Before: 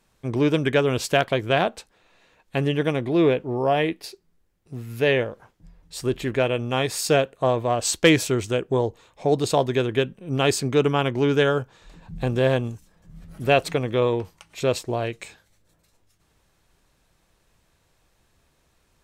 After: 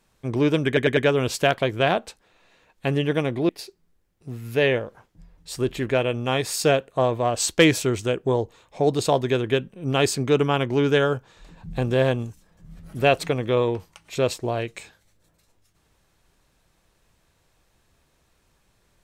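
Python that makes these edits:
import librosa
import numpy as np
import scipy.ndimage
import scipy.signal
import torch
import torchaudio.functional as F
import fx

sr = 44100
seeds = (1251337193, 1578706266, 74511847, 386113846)

y = fx.edit(x, sr, fx.stutter(start_s=0.67, slice_s=0.1, count=4),
    fx.cut(start_s=3.19, length_s=0.75), tone=tone)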